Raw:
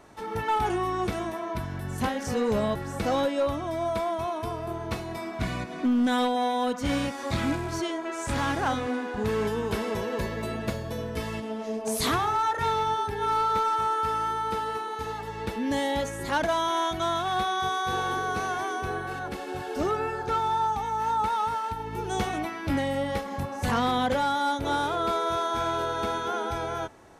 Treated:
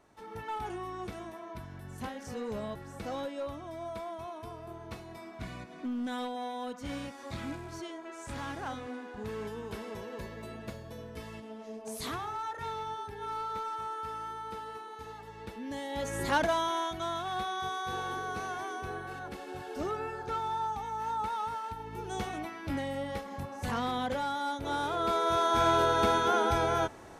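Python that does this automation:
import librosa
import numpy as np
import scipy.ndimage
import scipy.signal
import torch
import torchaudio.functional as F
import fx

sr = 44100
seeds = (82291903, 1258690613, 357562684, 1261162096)

y = fx.gain(x, sr, db=fx.line((15.89, -11.5), (16.17, 1.0), (16.93, -7.5), (24.6, -7.5), (25.68, 3.0)))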